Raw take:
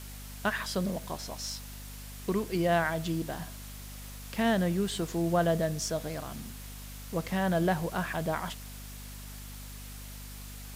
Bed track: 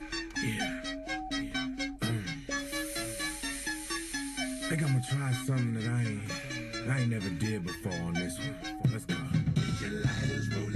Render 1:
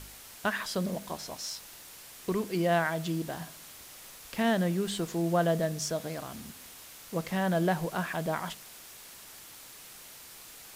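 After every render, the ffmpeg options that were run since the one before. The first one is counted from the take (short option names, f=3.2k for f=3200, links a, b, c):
-af "bandreject=f=50:t=h:w=4,bandreject=f=100:t=h:w=4,bandreject=f=150:t=h:w=4,bandreject=f=200:t=h:w=4,bandreject=f=250:t=h:w=4"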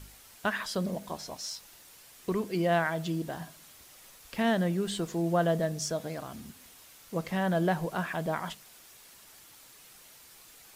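-af "afftdn=nr=6:nf=-49"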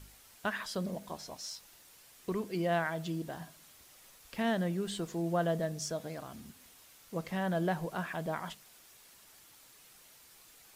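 -af "volume=-4.5dB"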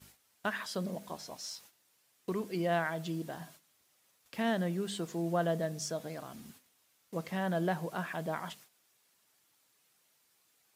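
-af "agate=range=-13dB:threshold=-55dB:ratio=16:detection=peak,highpass=110"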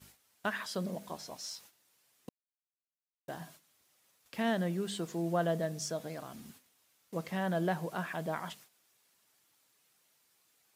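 -filter_complex "[0:a]asplit=3[a][b][c];[a]atrim=end=2.29,asetpts=PTS-STARTPTS,afade=t=out:st=2.286:d=0.004:c=hsin[d];[b]atrim=start=2.29:end=3.28,asetpts=PTS-STARTPTS,volume=0[e];[c]atrim=start=3.28,asetpts=PTS-STARTPTS,afade=t=in:d=0.004:c=hsin[f];[d][e][f]concat=n=3:v=0:a=1"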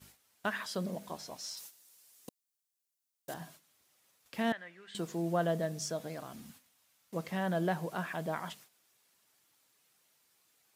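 -filter_complex "[0:a]asettb=1/sr,asplit=3[a][b][c];[a]atrim=end=1.574[d];[b]atrim=start=1.57:end=3.34,asetpts=PTS-STARTPTS,afade=t=in:d=0.004:c=qsin,afade=t=out:st=1.766:d=0.004:c=qsin,bass=f=250:g=-4,treble=f=4k:g=11[e];[c]atrim=start=3.336[f];[d][e]acrossfade=d=0.004:c1=hsin:c2=qsin[g];[g][f]acrossfade=d=0.004:c1=qsin:c2=hsin,asettb=1/sr,asplit=3[h][i][j];[h]atrim=end=4.524[k];[i]atrim=start=4.52:end=4.95,asetpts=PTS-STARTPTS,afade=t=in:d=0.004:c=qsin,afade=t=out:st=0.426:d=0.004:c=qsin,bandpass=f=1.9k:t=q:w=2.2[l];[j]atrim=start=4.946[m];[k][l]acrossfade=d=0.004:c1=hsin:c2=qsin[n];[n][m]acrossfade=d=0.004:c1=qsin:c2=hsin,asettb=1/sr,asplit=3[o][p][q];[o]atrim=end=6.454[r];[p]atrim=start=6.45:end=7.14,asetpts=PTS-STARTPTS,afade=t=in:d=0.004:c=qsin,afade=t=out:st=0.686:d=0.004:c=qsin,equalizer=f=380:w=3.9:g=-12[s];[q]atrim=start=7.136[t];[r][s]acrossfade=d=0.004:c1=hsin:c2=qsin[u];[u][t]acrossfade=d=0.004:c1=qsin:c2=hsin"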